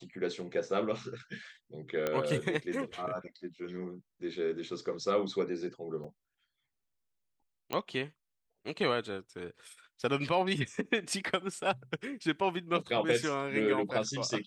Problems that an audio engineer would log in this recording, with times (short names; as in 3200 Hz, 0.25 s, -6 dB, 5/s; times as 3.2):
2.07 pop -17 dBFS
6.04 gap 4.6 ms
7.73 pop -18 dBFS